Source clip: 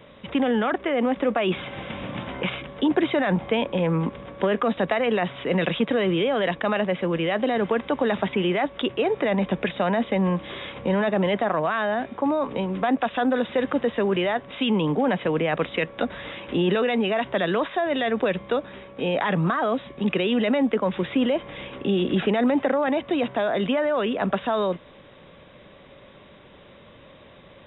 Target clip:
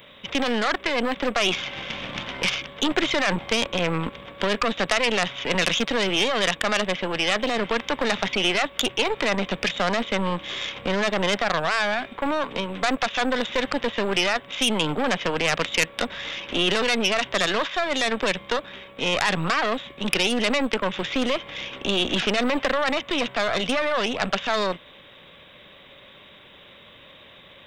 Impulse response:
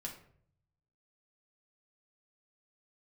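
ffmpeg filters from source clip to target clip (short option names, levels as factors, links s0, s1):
-af "aeval=exprs='0.335*(cos(1*acos(clip(val(0)/0.335,-1,1)))-cos(1*PI/2))+0.0473*(cos(6*acos(clip(val(0)/0.335,-1,1)))-cos(6*PI/2))':c=same,crystalizer=i=9:c=0,volume=0.562"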